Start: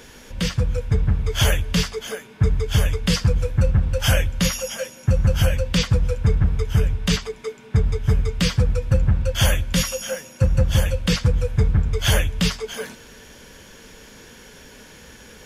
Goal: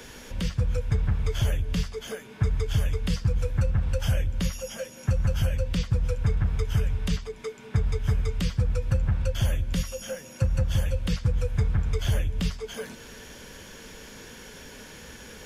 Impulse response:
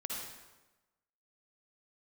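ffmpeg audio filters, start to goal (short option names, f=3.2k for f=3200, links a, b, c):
-filter_complex "[0:a]acrossover=split=120|570[a][b][c];[a]acompressor=threshold=-22dB:ratio=4[d];[b]acompressor=threshold=-34dB:ratio=4[e];[c]acompressor=threshold=-39dB:ratio=4[f];[d][e][f]amix=inputs=3:normalize=0"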